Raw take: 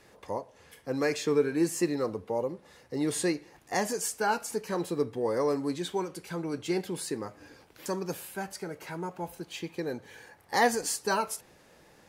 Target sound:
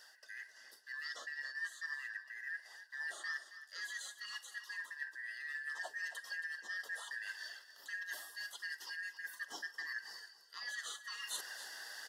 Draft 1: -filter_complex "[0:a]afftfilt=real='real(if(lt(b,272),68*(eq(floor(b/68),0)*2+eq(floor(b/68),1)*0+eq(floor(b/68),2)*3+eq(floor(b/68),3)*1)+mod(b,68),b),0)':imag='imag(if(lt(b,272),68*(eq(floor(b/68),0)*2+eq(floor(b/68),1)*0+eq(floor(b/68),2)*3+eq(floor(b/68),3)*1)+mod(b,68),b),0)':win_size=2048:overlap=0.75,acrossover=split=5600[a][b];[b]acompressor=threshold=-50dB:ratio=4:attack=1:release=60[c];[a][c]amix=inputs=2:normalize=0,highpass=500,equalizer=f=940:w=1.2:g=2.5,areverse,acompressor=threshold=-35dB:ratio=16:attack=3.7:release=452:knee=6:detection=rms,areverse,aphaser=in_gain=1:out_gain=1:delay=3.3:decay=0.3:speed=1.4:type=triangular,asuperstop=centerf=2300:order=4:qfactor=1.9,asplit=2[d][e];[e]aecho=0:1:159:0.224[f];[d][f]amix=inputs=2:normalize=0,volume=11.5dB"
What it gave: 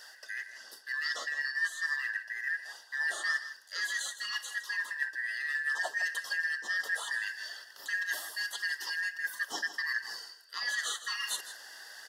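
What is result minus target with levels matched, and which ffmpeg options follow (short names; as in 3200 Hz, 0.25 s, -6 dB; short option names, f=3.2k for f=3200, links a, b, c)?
compressor: peak gain reduction -10.5 dB; echo 0.113 s early
-filter_complex "[0:a]afftfilt=real='real(if(lt(b,272),68*(eq(floor(b/68),0)*2+eq(floor(b/68),1)*0+eq(floor(b/68),2)*3+eq(floor(b/68),3)*1)+mod(b,68),b),0)':imag='imag(if(lt(b,272),68*(eq(floor(b/68),0)*2+eq(floor(b/68),1)*0+eq(floor(b/68),2)*3+eq(floor(b/68),3)*1)+mod(b,68),b),0)':win_size=2048:overlap=0.75,acrossover=split=5600[a][b];[b]acompressor=threshold=-50dB:ratio=4:attack=1:release=60[c];[a][c]amix=inputs=2:normalize=0,highpass=500,equalizer=f=940:w=1.2:g=2.5,areverse,acompressor=threshold=-46dB:ratio=16:attack=3.7:release=452:knee=6:detection=rms,areverse,aphaser=in_gain=1:out_gain=1:delay=3.3:decay=0.3:speed=1.4:type=triangular,asuperstop=centerf=2300:order=4:qfactor=1.9,asplit=2[d][e];[e]aecho=0:1:272:0.224[f];[d][f]amix=inputs=2:normalize=0,volume=11.5dB"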